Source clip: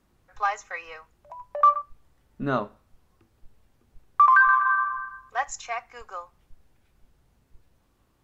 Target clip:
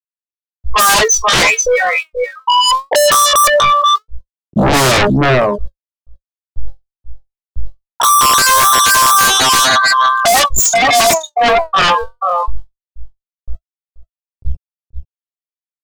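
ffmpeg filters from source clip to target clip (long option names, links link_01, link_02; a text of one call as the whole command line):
ffmpeg -i in.wav -filter_complex "[0:a]afftfilt=real='re*gte(hypot(re,im),0.0562)':imag='im*gte(hypot(re,im),0.0562)':win_size=1024:overlap=0.75,acompressor=threshold=-19dB:ratio=8,aphaser=in_gain=1:out_gain=1:delay=4.6:decay=0.74:speed=0.4:type=triangular,equalizer=frequency=2200:width=0.44:gain=-5.5,atempo=0.52,equalizer=frequency=250:width_type=o:width=1:gain=-11,equalizer=frequency=2000:width_type=o:width=1:gain=-11,equalizer=frequency=4000:width_type=o:width=1:gain=6,asplit=2[link_01][link_02];[link_02]aecho=0:1:482:0.133[link_03];[link_01][link_03]amix=inputs=2:normalize=0,asplit=2[link_04][link_05];[link_05]highpass=frequency=720:poles=1,volume=29dB,asoftclip=type=tanh:threshold=-13dB[link_06];[link_04][link_06]amix=inputs=2:normalize=0,lowpass=frequency=4500:poles=1,volume=-6dB,aeval=exprs='0.224*sin(PI/2*5.01*val(0)/0.224)':channel_layout=same,dynaudnorm=framelen=790:gausssize=3:maxgain=10dB,alimiter=level_in=14.5dB:limit=-1dB:release=50:level=0:latency=1,volume=-6dB" out.wav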